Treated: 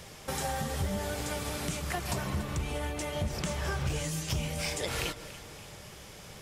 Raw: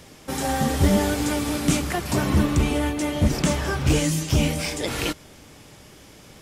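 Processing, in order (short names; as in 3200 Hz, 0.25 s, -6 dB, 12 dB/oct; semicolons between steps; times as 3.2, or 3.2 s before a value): compressor 6:1, threshold -29 dBFS, peak gain reduction 14.5 dB; bell 280 Hz -12 dB 0.5 oct; echo with dull and thin repeats by turns 0.143 s, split 1400 Hz, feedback 70%, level -12 dB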